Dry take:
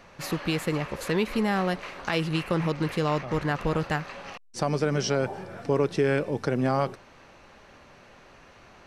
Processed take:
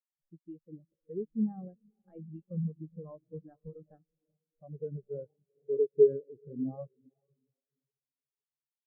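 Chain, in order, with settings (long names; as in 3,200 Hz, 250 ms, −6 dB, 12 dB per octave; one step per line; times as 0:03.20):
stylus tracing distortion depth 0.2 ms
feedback delay with all-pass diffusion 450 ms, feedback 65%, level −8.5 dB
every bin expanded away from the loudest bin 4 to 1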